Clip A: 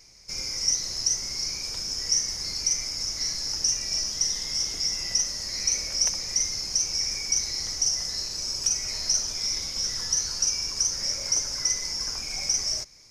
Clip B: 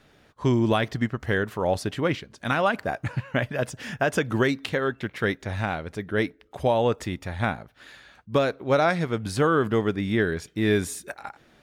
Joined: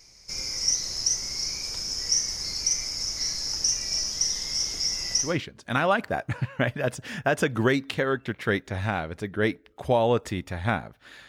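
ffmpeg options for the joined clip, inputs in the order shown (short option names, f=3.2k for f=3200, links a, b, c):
-filter_complex "[0:a]apad=whole_dur=11.28,atrim=end=11.28,atrim=end=5.39,asetpts=PTS-STARTPTS[a];[1:a]atrim=start=1.92:end=8.03,asetpts=PTS-STARTPTS[b];[a][b]acrossfade=d=0.22:c1=tri:c2=tri"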